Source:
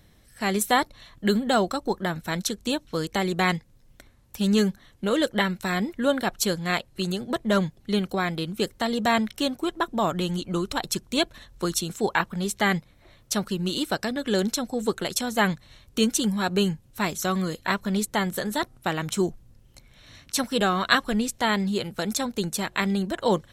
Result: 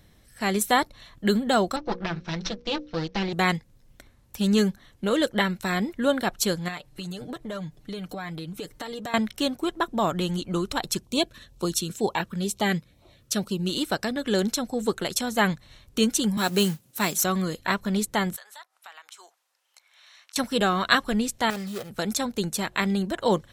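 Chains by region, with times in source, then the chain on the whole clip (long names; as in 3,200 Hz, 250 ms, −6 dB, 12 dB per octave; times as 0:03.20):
0:01.76–0:03.33: lower of the sound and its delayed copy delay 5.9 ms + elliptic low-pass filter 5,700 Hz, stop band 60 dB + mains-hum notches 60/120/180/240/300/360/420/480/540 Hz
0:06.68–0:09.14: comb filter 6.7 ms, depth 64% + downward compressor 5 to 1, threshold −32 dBFS
0:11.02–0:13.69: notch filter 2,100 Hz, Q 14 + auto-filter notch sine 2.1 Hz 730–1,800 Hz + high-pass filter 44 Hz
0:16.37–0:17.24: high-pass filter 130 Hz 24 dB per octave + high-shelf EQ 5,600 Hz +11.5 dB + noise that follows the level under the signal 19 dB
0:18.36–0:20.36: high-pass filter 810 Hz 24 dB per octave + high-shelf EQ 12,000 Hz −7 dB + downward compressor 2.5 to 1, threshold −49 dBFS
0:21.50–0:21.90: running median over 41 samples + spectral tilt +3 dB per octave + comb filter 1.6 ms, depth 35%
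whole clip: no processing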